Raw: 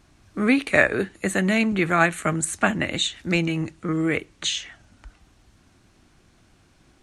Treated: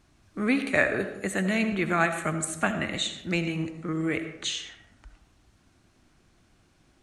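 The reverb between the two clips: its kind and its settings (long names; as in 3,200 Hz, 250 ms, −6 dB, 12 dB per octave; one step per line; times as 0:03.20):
comb and all-pass reverb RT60 0.93 s, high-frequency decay 0.45×, pre-delay 40 ms, DRR 8.5 dB
level −5.5 dB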